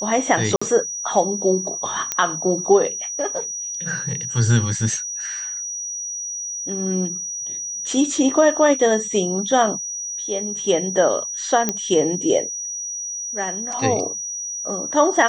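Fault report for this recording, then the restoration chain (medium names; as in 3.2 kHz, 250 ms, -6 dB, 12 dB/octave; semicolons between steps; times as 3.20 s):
whine 5.8 kHz -26 dBFS
0.56–0.61 s: dropout 55 ms
2.12 s: pop -5 dBFS
11.69 s: pop -5 dBFS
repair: de-click; band-stop 5.8 kHz, Q 30; interpolate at 0.56 s, 55 ms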